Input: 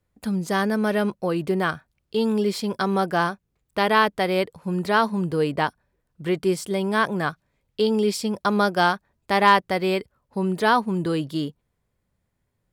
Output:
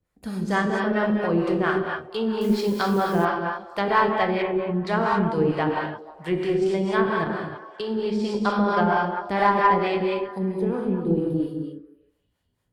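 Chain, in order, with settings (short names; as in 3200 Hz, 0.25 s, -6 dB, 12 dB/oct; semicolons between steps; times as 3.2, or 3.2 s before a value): treble ducked by the level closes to 1300 Hz, closed at -15 dBFS; 7.24–8.06 level quantiser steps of 23 dB; 10.38–12.04 spectral gain 560–8600 Hz -18 dB; non-linear reverb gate 0.32 s flat, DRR -1.5 dB; harmonic tremolo 4.4 Hz, depth 70%, crossover 480 Hz; 2.41–3.25 requantised 8-bit, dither triangular; on a send: delay with a stepping band-pass 0.16 s, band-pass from 350 Hz, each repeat 0.7 oct, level -12 dB; on the sum: added harmonics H 4 -26 dB, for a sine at -7 dBFS; 4.42–4.87 air absorption 340 m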